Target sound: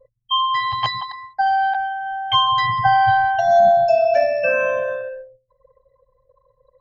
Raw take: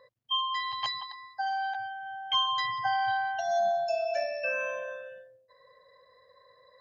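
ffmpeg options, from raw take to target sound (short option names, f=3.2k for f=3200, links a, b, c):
-af "anlmdn=0.0251,acontrast=75,aemphasis=mode=reproduction:type=riaa,volume=6dB"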